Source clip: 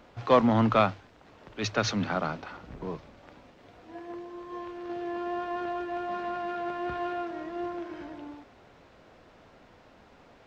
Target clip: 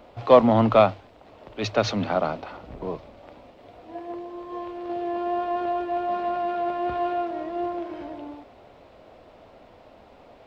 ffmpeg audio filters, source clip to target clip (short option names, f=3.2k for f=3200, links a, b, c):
-af "equalizer=f=160:t=o:w=0.67:g=-4,equalizer=f=630:t=o:w=0.67:g=6,equalizer=f=1.6k:t=o:w=0.67:g=-6,equalizer=f=6.3k:t=o:w=0.67:g=-7,volume=4dB"